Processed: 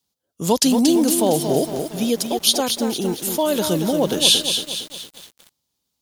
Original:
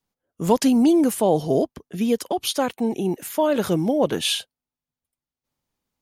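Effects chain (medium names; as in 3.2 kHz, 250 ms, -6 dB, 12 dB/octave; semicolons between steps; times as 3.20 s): high-pass 43 Hz 24 dB/octave; resonant high shelf 2.8 kHz +8.5 dB, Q 1.5; bit-crushed delay 230 ms, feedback 55%, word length 6-bit, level -6.5 dB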